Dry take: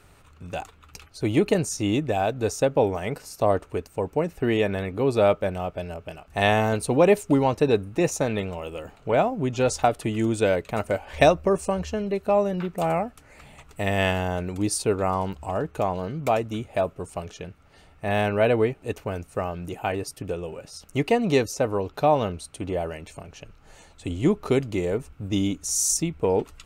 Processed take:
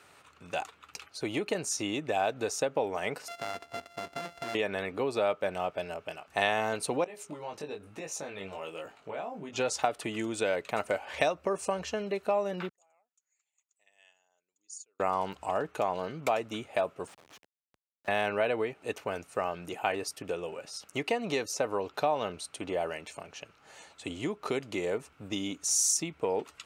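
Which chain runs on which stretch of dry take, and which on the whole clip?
3.28–4.55 s: sorted samples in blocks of 64 samples + treble shelf 6.3 kHz -8.5 dB + compression 8:1, threshold -31 dBFS
7.04–9.56 s: compression 12:1, threshold -28 dBFS + chorus 1.1 Hz, delay 18.5 ms, depth 2.1 ms
12.69–15.00 s: resonances exaggerated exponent 1.5 + band-pass filter 6.8 kHz, Q 18
17.07–18.08 s: high-pass 900 Hz + slow attack 110 ms + Schmitt trigger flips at -45.5 dBFS
whole clip: bass shelf 140 Hz +5.5 dB; compression 6:1, threshold -22 dBFS; frequency weighting A

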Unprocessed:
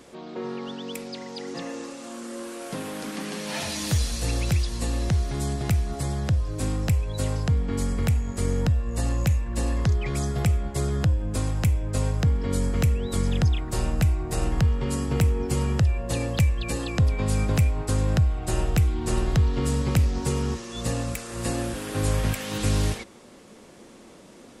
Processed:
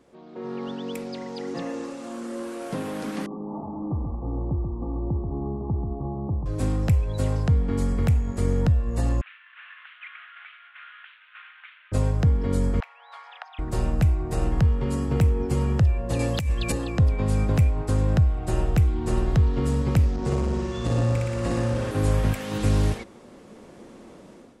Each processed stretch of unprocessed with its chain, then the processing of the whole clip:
3.26–6.46 s: CVSD coder 32 kbps + rippled Chebyshev low-pass 1.2 kHz, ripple 9 dB + delay 135 ms -6 dB
9.21–11.92 s: CVSD coder 16 kbps + elliptic high-pass 1.4 kHz, stop band 80 dB
12.80–13.59 s: steep high-pass 760 Hz 48 dB/octave + distance through air 340 m
16.19–16.72 s: treble shelf 3.1 kHz +10.5 dB + compressor with a negative ratio -21 dBFS, ratio -0.5 + high-pass 44 Hz
20.16–21.91 s: low-pass 7.2 kHz + flutter echo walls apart 10.2 m, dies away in 1.2 s + transformer saturation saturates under 220 Hz
whole clip: treble shelf 2.1 kHz -9.5 dB; level rider gain up to 11.5 dB; trim -8 dB

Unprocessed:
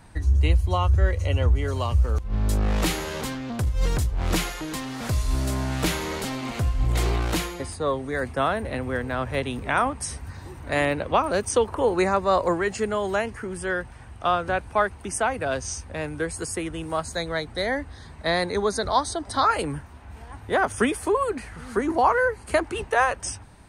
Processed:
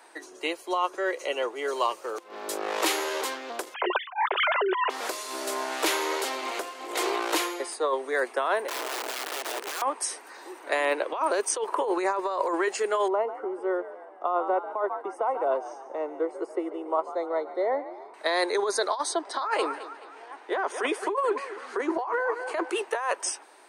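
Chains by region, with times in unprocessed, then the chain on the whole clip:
3.74–4.90 s: formants replaced by sine waves + steep high-pass 350 Hz 96 dB/octave
8.68–9.82 s: compression 4:1, threshold -27 dBFS + integer overflow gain 28.5 dB
13.08–18.14 s: Savitzky-Golay filter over 65 samples + frequency-shifting echo 143 ms, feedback 52%, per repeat +70 Hz, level -14.5 dB
19.12–22.70 s: distance through air 73 m + feedback delay 214 ms, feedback 39%, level -16 dB
whole clip: elliptic high-pass 350 Hz, stop band 70 dB; dynamic bell 1 kHz, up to +7 dB, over -43 dBFS, Q 6.8; compressor with a negative ratio -25 dBFS, ratio -1

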